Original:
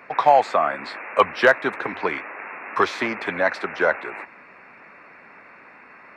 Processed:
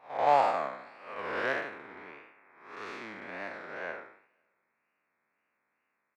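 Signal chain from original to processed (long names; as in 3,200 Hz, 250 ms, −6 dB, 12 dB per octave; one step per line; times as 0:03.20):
spectrum smeared in time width 313 ms
tape wow and flutter 110 cents
single-tap delay 521 ms −18.5 dB
expander for the loud parts 2.5 to 1, over −41 dBFS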